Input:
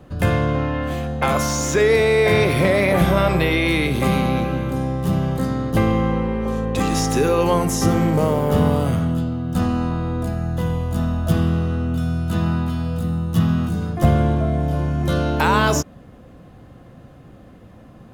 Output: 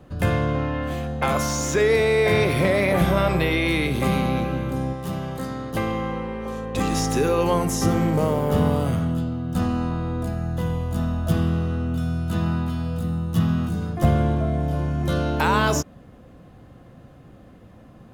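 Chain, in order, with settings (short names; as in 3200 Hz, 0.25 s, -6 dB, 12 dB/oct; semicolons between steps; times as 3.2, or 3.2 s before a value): 4.93–6.75 low shelf 360 Hz -8 dB; gain -3 dB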